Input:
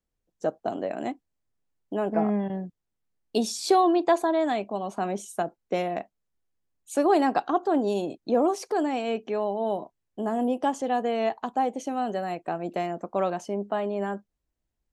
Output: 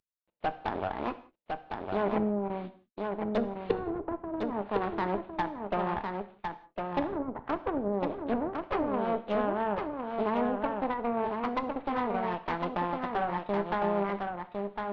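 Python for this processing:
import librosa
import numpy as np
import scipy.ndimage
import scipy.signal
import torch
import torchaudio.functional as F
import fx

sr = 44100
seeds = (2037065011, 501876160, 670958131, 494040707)

y = fx.cvsd(x, sr, bps=16000)
y = fx.formant_shift(y, sr, semitones=4)
y = fx.env_lowpass_down(y, sr, base_hz=320.0, full_db=-20.5)
y = fx.cheby_harmonics(y, sr, harmonics=(8,), levels_db=(-19,), full_scale_db=-11.5)
y = y + 10.0 ** (-4.5 / 20.0) * np.pad(y, (int(1056 * sr / 1000.0), 0))[:len(y)]
y = fx.rev_gated(y, sr, seeds[0], gate_ms=210, shape='falling', drr_db=11.0)
y = y * librosa.db_to_amplitude(-3.0)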